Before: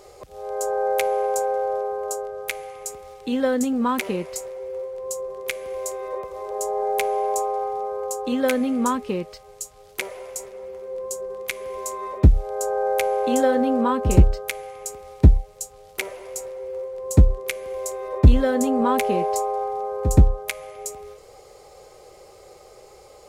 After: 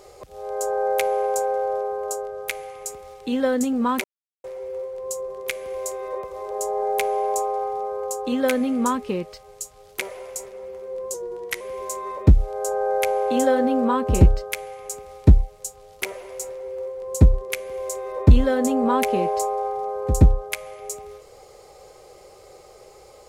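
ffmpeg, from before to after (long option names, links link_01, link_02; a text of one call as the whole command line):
ffmpeg -i in.wav -filter_complex "[0:a]asplit=5[link_01][link_02][link_03][link_04][link_05];[link_01]atrim=end=4.04,asetpts=PTS-STARTPTS,afade=type=out:start_time=4.036:duration=0.004:curve=hsin[link_06];[link_02]atrim=start=4.04:end=4.44,asetpts=PTS-STARTPTS,volume=0[link_07];[link_03]atrim=start=4.44:end=11.144,asetpts=PTS-STARTPTS,afade=type=in:duration=0.004:curve=hsin[link_08];[link_04]atrim=start=11.14:end=11.57,asetpts=PTS-STARTPTS,asetrate=40572,aresample=44100[link_09];[link_05]atrim=start=11.566[link_10];[link_06][link_07][link_08]concat=n=3:v=0:a=1[link_11];[link_11][link_09]acrossfade=duration=0.004:curve1=hsin:curve2=hsin[link_12];[link_12][link_10]acrossfade=duration=0.004:curve1=hsin:curve2=hsin" out.wav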